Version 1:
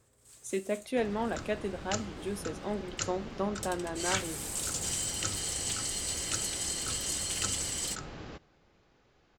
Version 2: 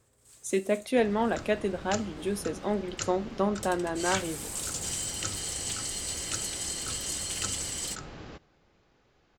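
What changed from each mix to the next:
speech +5.5 dB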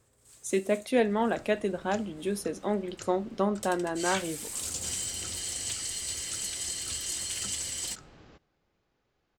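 second sound -10.0 dB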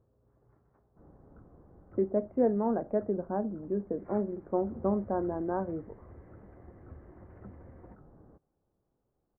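speech: entry +1.45 s; second sound: send off; master: add Gaussian low-pass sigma 8.6 samples

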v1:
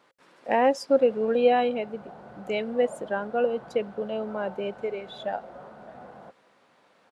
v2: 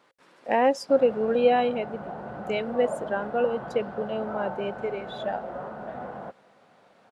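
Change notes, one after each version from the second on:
background +8.5 dB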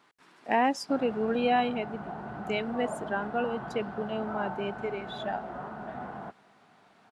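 master: add peaking EQ 530 Hz -14 dB 0.32 oct

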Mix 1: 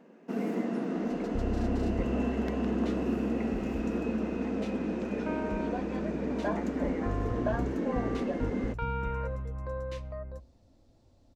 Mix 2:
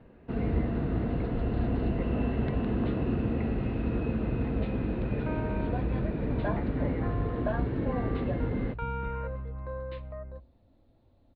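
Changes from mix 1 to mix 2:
first sound: remove brick-wall FIR high-pass 170 Hz; second sound: add distance through air 120 m; master: add elliptic low-pass 4.1 kHz, stop band 50 dB

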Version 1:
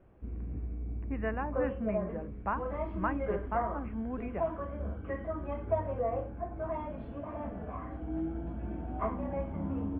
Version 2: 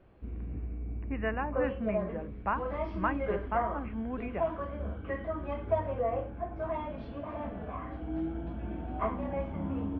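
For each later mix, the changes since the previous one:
master: remove distance through air 440 m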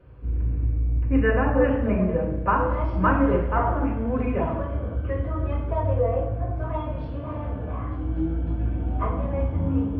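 reverb: on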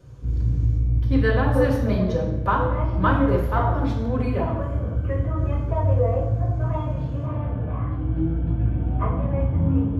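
speech: remove brick-wall FIR low-pass 2.9 kHz; background: add peaking EQ 130 Hz +11 dB 0.82 oct

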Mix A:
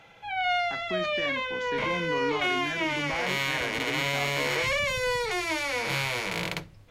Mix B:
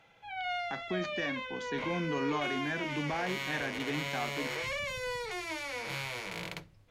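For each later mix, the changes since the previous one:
background -9.0 dB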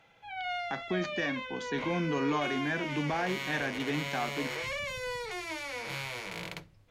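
speech +3.0 dB

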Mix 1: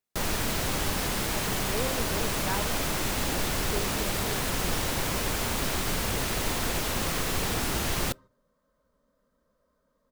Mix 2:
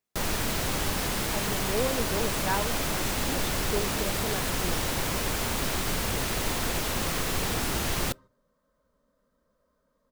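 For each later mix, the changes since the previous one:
speech +4.5 dB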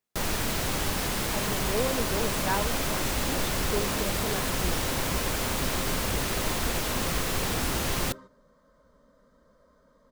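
second sound +11.0 dB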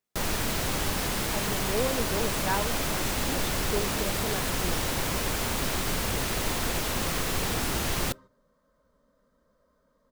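second sound -7.0 dB

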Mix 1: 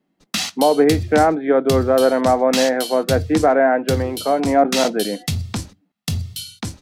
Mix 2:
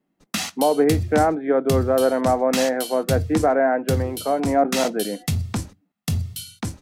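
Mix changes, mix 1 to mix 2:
speech -3.5 dB; master: add peaking EQ 4.1 kHz -6.5 dB 1.4 oct

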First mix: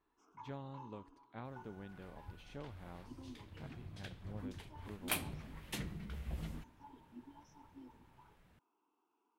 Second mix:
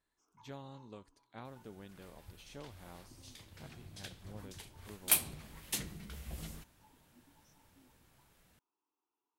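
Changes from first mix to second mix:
first sound -10.5 dB; master: add tone controls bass -3 dB, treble +13 dB

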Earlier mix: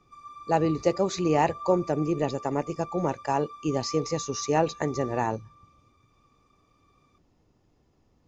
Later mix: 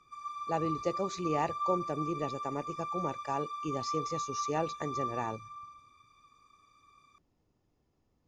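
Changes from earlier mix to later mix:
speech -9.0 dB; background: send +11.5 dB

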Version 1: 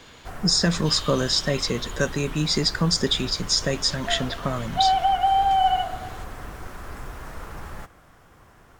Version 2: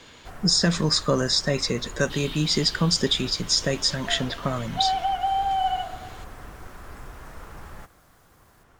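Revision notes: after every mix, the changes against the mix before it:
first sound -4.5 dB; second sound: entry +1.25 s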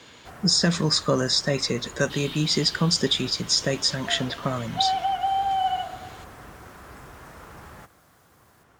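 master: add high-pass 77 Hz 12 dB/octave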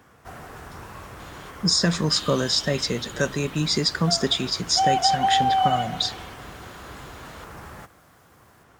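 speech: entry +1.20 s; first sound +3.5 dB

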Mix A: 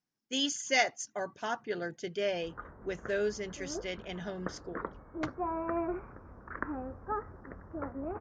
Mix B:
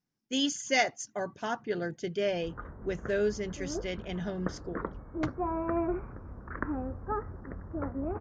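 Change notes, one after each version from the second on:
master: add bass shelf 300 Hz +9 dB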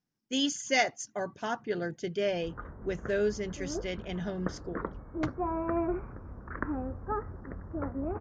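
no change

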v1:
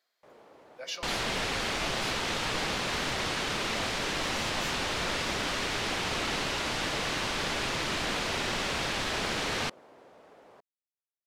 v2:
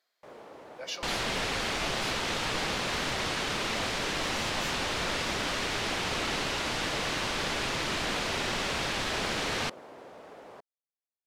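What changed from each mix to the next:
first sound +7.0 dB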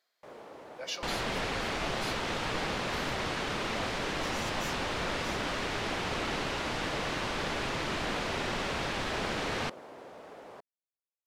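second sound: add treble shelf 2.7 kHz -8 dB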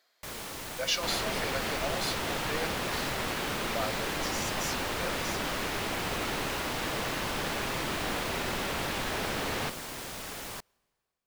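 speech +7.5 dB; first sound: remove band-pass filter 540 Hz, Q 1.3; reverb: on, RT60 2.1 s

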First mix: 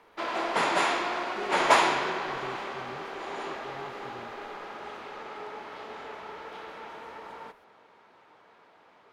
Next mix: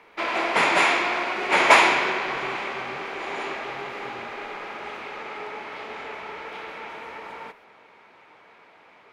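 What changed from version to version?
background +4.0 dB; master: add peaking EQ 2.3 kHz +8.5 dB 0.52 oct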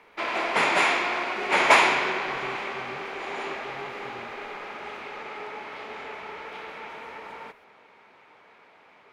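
background: send off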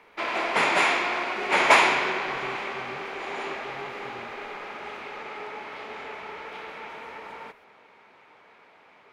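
no change

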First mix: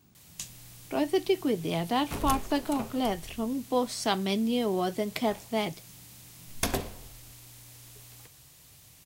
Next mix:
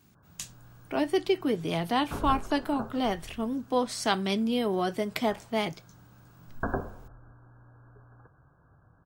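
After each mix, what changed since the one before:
background: add brick-wall FIR low-pass 1.7 kHz; master: add peaking EQ 1.5 kHz +4.5 dB 0.93 oct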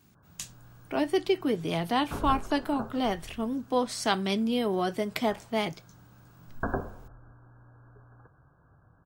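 no change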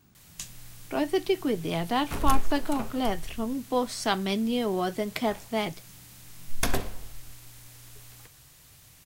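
background: remove brick-wall FIR low-pass 1.7 kHz; master: remove high-pass 59 Hz 6 dB/octave

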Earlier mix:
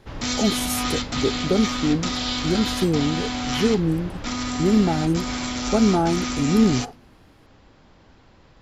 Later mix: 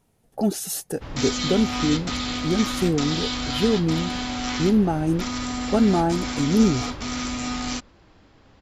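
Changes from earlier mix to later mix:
background: entry +0.95 s; reverb: off

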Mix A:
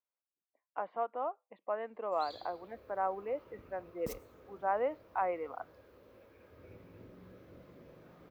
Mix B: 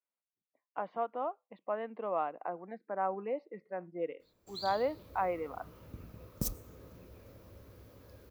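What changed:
background: entry +2.35 s; master: add tone controls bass +12 dB, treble +13 dB

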